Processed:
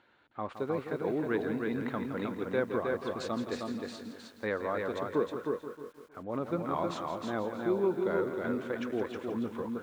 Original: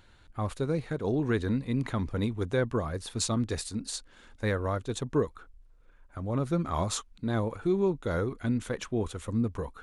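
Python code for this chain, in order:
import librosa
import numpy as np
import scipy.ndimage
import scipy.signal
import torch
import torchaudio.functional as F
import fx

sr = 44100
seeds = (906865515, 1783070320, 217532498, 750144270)

y = fx.bandpass_edges(x, sr, low_hz=270.0, high_hz=2600.0)
y = fx.echo_feedback(y, sr, ms=313, feedback_pct=19, wet_db=-4)
y = fx.echo_crushed(y, sr, ms=167, feedback_pct=55, bits=9, wet_db=-10.0)
y = y * librosa.db_to_amplitude(-1.5)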